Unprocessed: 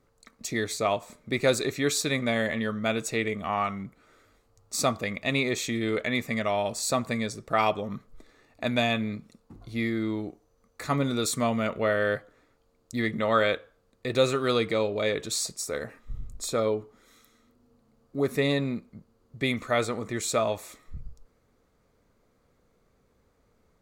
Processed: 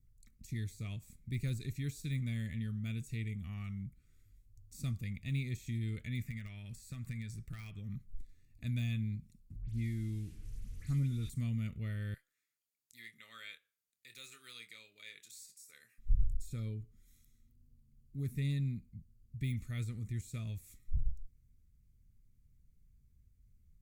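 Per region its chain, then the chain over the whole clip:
0:06.21–0:07.96: parametric band 1,700 Hz +9 dB 1.5 octaves + downward compressor 2 to 1, threshold −32 dBFS + hard clipping −21 dBFS
0:09.62–0:11.30: linear delta modulator 64 kbit/s, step −38.5 dBFS + high-shelf EQ 7,300 Hz −11 dB + all-pass dispersion highs, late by 78 ms, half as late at 3,000 Hz
0:12.14–0:15.98: high-pass filter 1,000 Hz + double-tracking delay 26 ms −10 dB
whole clip: drawn EQ curve 130 Hz 0 dB, 610 Hz −21 dB, 2,300 Hz −5 dB, 3,900 Hz −9 dB, 13,000 Hz +4 dB; de-essing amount 100%; guitar amp tone stack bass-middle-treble 10-0-1; level +13 dB

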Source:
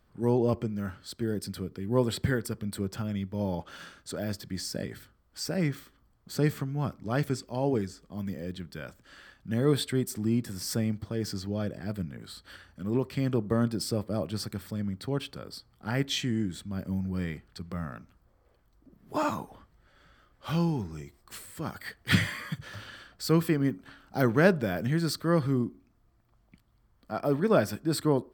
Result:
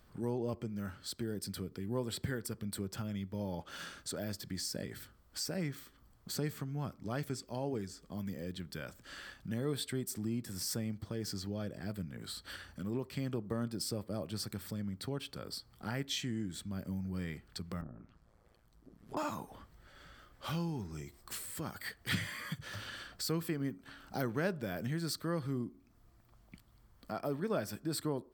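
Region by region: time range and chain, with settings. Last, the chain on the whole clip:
0:17.81–0:19.17: treble cut that deepens with the level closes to 530 Hz, closed at −34 dBFS + amplitude modulation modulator 110 Hz, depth 75%
whole clip: high-shelf EQ 3,900 Hz +5.5 dB; downward compressor 2 to 1, threshold −46 dBFS; level +2.5 dB

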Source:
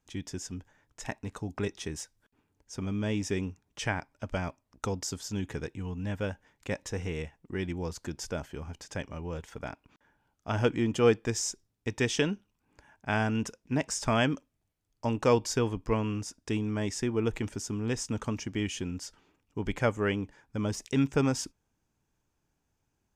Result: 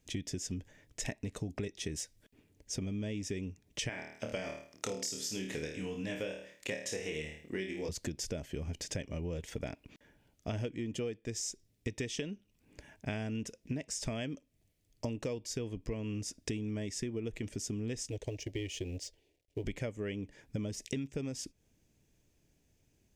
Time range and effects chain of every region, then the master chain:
0:03.89–0:07.89: high-pass filter 580 Hz 6 dB per octave + flutter between parallel walls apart 4.5 metres, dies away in 0.42 s
0:18.10–0:19.64: mu-law and A-law mismatch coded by A + low-pass filter 4,000 Hz 6 dB per octave + phaser with its sweep stopped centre 520 Hz, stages 4
whole clip: flat-topped bell 1,100 Hz −11.5 dB 1.2 octaves; downward compressor 16 to 1, threshold −41 dBFS; level +7 dB

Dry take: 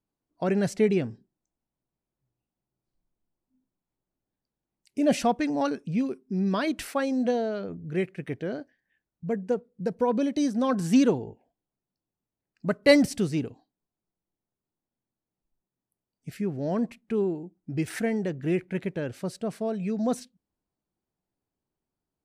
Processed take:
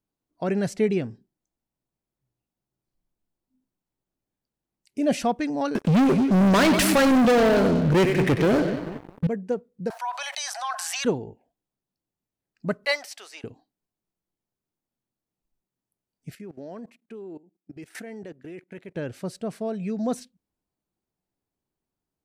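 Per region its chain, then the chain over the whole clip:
0:05.75–0:09.27: echo with a time of its own for lows and highs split 360 Hz, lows 217 ms, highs 94 ms, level −11.5 dB + leveller curve on the samples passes 5
0:09.90–0:11.05: Butterworth high-pass 710 Hz 72 dB per octave + envelope flattener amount 70%
0:12.85–0:13.44: high-pass filter 750 Hz 24 dB per octave + dynamic equaliser 9,400 Hz, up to −7 dB, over −48 dBFS, Q 0.99
0:16.35–0:18.95: high-pass filter 240 Hz + output level in coarse steps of 19 dB
whole clip: no processing

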